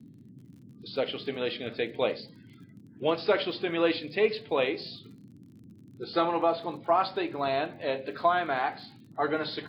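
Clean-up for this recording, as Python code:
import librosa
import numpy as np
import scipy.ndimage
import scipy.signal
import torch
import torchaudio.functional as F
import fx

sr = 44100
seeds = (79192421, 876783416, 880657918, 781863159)

y = fx.fix_declick_ar(x, sr, threshold=6.5)
y = fx.noise_reduce(y, sr, print_start_s=2.46, print_end_s=2.96, reduce_db=21.0)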